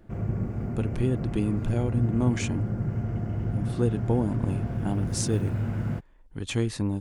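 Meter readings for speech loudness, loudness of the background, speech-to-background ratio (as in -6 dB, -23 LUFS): -29.5 LUFS, -31.0 LUFS, 1.5 dB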